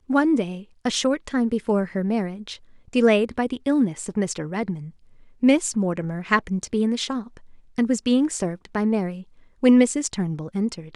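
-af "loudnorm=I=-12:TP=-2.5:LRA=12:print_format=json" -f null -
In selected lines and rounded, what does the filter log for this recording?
"input_i" : "-22.8",
"input_tp" : "-4.4",
"input_lra" : "1.5",
"input_thresh" : "-33.2",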